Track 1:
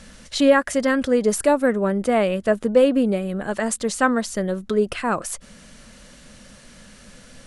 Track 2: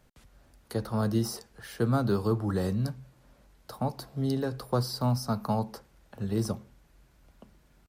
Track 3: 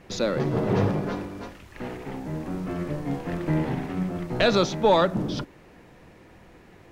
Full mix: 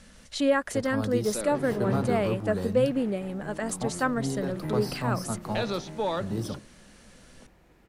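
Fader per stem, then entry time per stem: -8.0, -3.5, -10.0 dB; 0.00, 0.00, 1.15 s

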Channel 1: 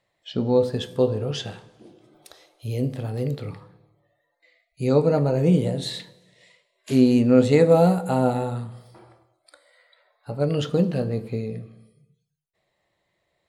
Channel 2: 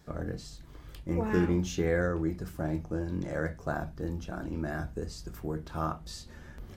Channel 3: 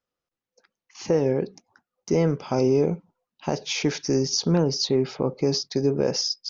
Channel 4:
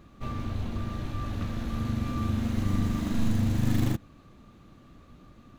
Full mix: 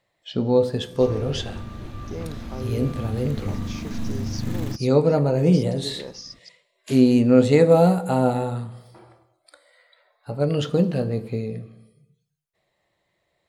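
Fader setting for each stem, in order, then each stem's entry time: +1.0 dB, off, -13.5 dB, -2.5 dB; 0.00 s, off, 0.00 s, 0.80 s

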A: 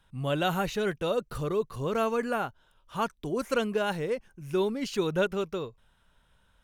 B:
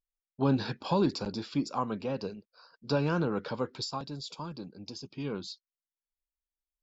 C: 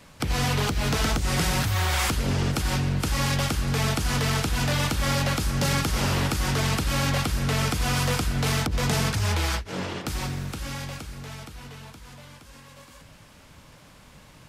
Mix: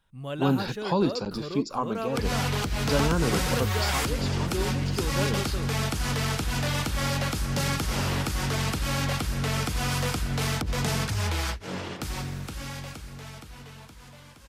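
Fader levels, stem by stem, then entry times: -5.5, +2.5, -3.0 dB; 0.00, 0.00, 1.95 s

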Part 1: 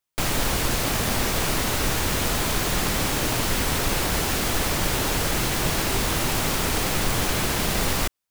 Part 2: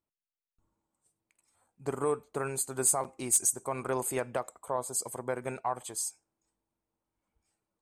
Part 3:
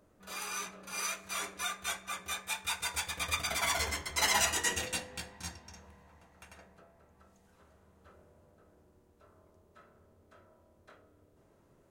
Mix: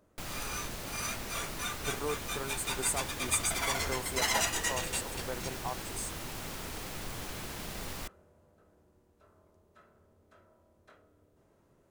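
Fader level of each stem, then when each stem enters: -17.0, -6.0, -1.5 dB; 0.00, 0.00, 0.00 s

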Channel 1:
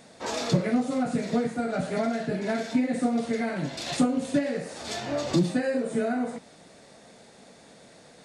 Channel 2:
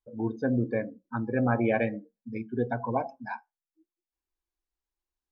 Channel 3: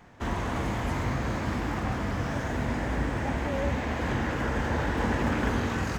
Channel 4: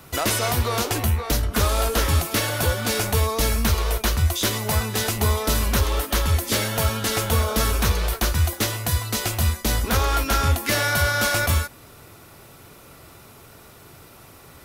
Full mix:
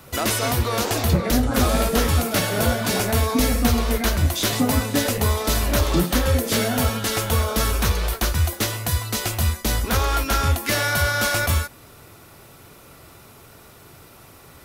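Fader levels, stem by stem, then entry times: +1.5 dB, -4.0 dB, off, 0.0 dB; 0.60 s, 0.00 s, off, 0.00 s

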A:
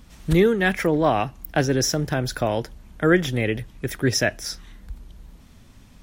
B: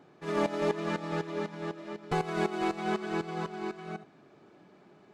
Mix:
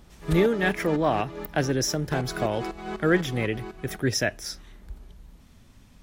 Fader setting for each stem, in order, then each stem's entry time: -4.0, -3.5 dB; 0.00, 0.00 s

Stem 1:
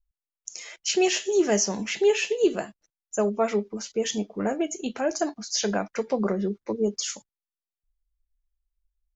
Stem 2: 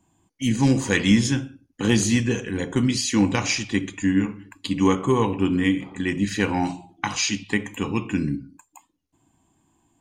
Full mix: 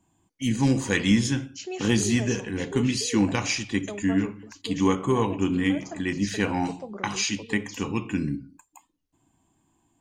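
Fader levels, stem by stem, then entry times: -13.0, -3.0 dB; 0.70, 0.00 s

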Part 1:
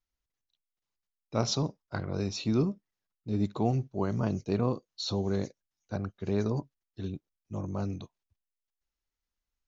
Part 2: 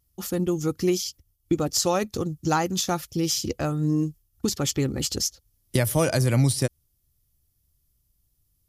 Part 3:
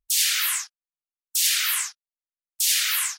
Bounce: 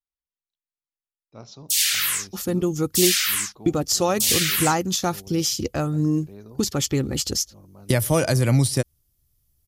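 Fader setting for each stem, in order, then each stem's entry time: -14.0, +2.0, +1.0 dB; 0.00, 2.15, 1.60 s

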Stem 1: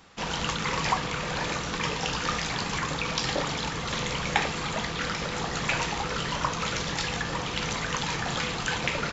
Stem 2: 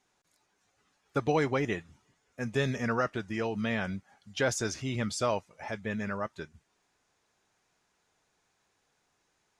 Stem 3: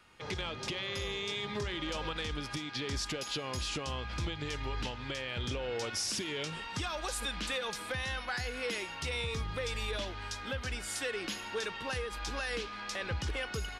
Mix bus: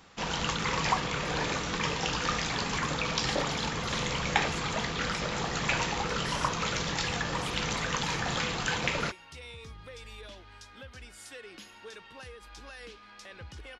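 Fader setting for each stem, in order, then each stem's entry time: -1.5, -14.5, -10.0 dB; 0.00, 0.00, 0.30 s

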